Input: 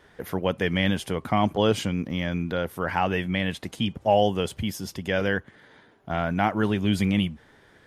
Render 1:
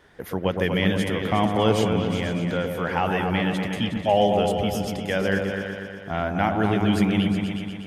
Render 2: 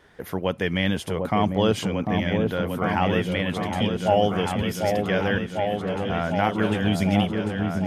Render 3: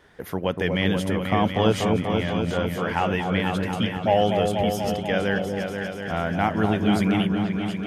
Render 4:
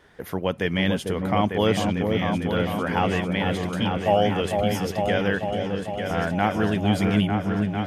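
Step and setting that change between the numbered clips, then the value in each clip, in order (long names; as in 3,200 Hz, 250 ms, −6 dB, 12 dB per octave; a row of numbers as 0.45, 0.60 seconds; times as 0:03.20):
echo whose low-pass opens from repeat to repeat, delay time: 121, 748, 242, 449 milliseconds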